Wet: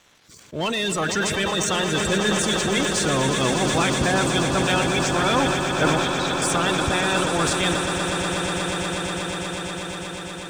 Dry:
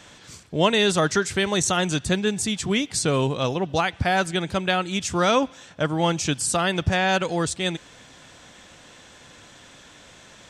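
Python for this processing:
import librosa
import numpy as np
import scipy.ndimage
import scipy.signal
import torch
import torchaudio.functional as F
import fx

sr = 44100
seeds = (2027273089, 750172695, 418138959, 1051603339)

p1 = fx.spec_quant(x, sr, step_db=30)
p2 = fx.leveller(p1, sr, passes=2)
p3 = fx.rider(p2, sr, range_db=10, speed_s=0.5)
p4 = fx.ladder_bandpass(p3, sr, hz=3900.0, resonance_pct=90, at=(5.98, 6.42))
p5 = p4 + fx.echo_swell(p4, sr, ms=121, loudest=8, wet_db=-10.5, dry=0)
p6 = fx.sustainer(p5, sr, db_per_s=26.0)
y = F.gain(torch.from_numpy(p6), -7.0).numpy()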